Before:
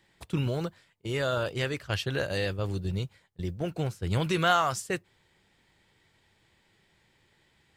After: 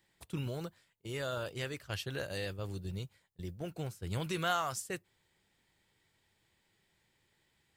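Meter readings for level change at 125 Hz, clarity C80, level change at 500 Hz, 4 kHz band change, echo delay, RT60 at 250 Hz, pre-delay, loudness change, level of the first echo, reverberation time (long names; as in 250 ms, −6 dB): −9.0 dB, no reverb audible, −9.0 dB, −7.5 dB, no echo audible, no reverb audible, no reverb audible, −8.5 dB, no echo audible, no reverb audible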